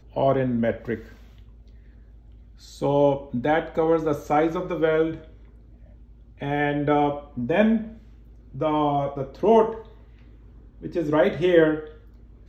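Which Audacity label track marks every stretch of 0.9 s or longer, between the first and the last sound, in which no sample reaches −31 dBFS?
0.980000	2.820000	silence
5.180000	6.420000	silence
9.800000	10.840000	silence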